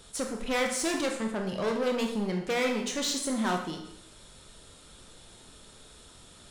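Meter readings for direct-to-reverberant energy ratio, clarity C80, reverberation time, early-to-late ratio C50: 2.0 dB, 9.0 dB, 0.80 s, 5.5 dB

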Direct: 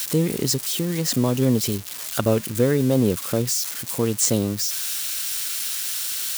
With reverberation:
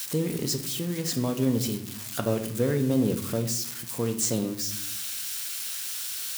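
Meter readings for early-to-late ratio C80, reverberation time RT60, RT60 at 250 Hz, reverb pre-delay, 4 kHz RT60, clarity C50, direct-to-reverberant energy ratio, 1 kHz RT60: 13.5 dB, 0.75 s, 1.2 s, 4 ms, 0.50 s, 10.5 dB, 5.5 dB, 0.65 s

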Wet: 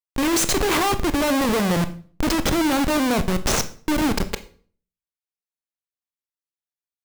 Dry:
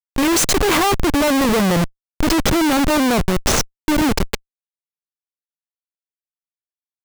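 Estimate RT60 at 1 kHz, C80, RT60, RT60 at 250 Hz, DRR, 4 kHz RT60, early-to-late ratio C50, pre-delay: 0.45 s, 19.5 dB, 0.45 s, 0.60 s, 10.5 dB, 0.40 s, 15.0 dB, 22 ms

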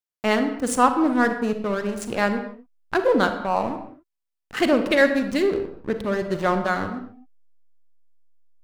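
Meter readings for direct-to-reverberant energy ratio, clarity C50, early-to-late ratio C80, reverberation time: 7.5 dB, 8.5 dB, 11.0 dB, not exponential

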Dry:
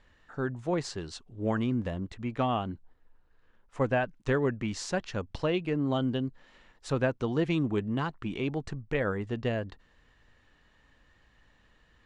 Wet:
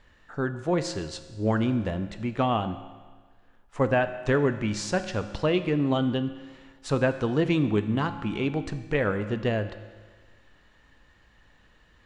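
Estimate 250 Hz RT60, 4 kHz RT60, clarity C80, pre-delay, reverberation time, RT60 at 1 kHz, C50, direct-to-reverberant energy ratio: 1.5 s, 1.5 s, 12.5 dB, 12 ms, 1.5 s, 1.5 s, 11.5 dB, 9.5 dB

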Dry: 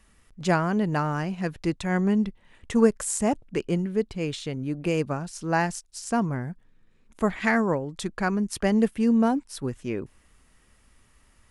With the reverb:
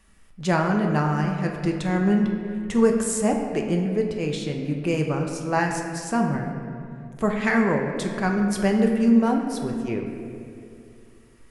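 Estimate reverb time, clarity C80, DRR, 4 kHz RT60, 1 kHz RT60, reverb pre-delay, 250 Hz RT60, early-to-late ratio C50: 2.5 s, 5.5 dB, 1.5 dB, 1.5 s, 2.2 s, 5 ms, 2.8 s, 4.5 dB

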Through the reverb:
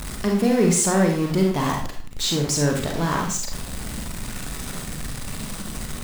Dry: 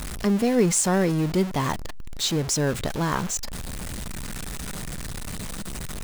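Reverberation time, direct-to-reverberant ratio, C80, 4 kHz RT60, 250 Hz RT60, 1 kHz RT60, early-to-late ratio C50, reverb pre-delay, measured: 0.50 s, 1.5 dB, 9.5 dB, 0.45 s, 0.45 s, 0.45 s, 4.5 dB, 33 ms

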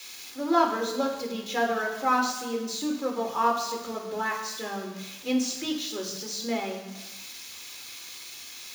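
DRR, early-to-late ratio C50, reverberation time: -3.5 dB, 6.0 dB, 1.1 s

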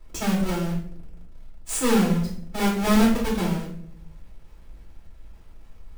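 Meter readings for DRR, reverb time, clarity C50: -5.5 dB, 0.60 s, 5.0 dB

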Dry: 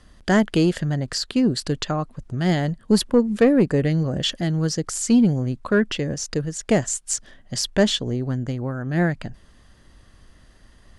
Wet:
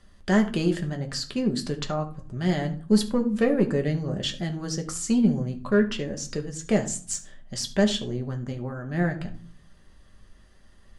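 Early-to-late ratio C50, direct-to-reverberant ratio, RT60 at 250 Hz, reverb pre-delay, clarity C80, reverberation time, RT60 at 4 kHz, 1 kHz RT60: 13.0 dB, 3.0 dB, 0.75 s, 5 ms, 18.0 dB, 0.45 s, 0.30 s, 0.50 s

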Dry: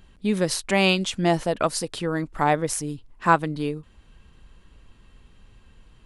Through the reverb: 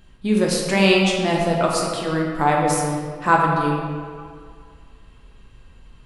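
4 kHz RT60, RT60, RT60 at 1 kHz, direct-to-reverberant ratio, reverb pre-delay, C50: 1.2 s, 2.0 s, 2.0 s, -2.0 dB, 7 ms, 1.0 dB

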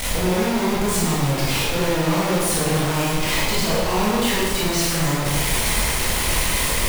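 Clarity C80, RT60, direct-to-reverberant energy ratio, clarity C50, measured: 1.0 dB, 1.4 s, -7.0 dB, -1.5 dB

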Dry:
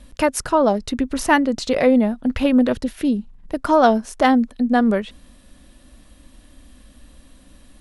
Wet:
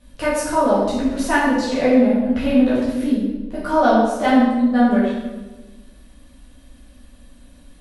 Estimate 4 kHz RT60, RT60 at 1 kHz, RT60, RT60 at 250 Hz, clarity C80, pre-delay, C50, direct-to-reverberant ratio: 0.85 s, 1.1 s, 1.2 s, 1.6 s, 2.5 dB, 8 ms, 0.0 dB, -10.0 dB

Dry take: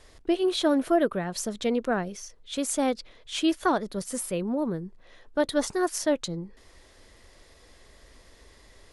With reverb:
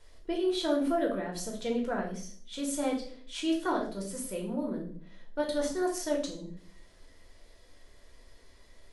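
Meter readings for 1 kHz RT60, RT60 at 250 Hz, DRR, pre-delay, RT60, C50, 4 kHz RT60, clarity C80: 0.45 s, 0.80 s, -1.5 dB, 3 ms, 0.55 s, 7.5 dB, 0.45 s, 12.0 dB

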